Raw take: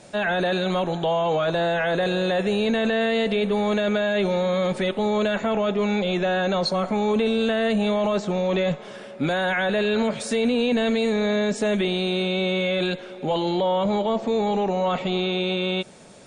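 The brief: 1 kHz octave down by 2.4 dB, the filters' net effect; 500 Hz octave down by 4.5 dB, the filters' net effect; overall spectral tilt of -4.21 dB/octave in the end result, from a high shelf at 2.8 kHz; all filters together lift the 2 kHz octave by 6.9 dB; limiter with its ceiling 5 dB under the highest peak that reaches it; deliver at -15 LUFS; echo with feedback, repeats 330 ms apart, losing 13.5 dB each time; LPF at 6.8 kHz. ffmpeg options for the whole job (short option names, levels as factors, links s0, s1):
-af "lowpass=6800,equalizer=f=500:t=o:g=-5.5,equalizer=f=1000:t=o:g=-3.5,equalizer=f=2000:t=o:g=6.5,highshelf=f=2800:g=9,alimiter=limit=0.2:level=0:latency=1,aecho=1:1:330|660:0.211|0.0444,volume=2.51"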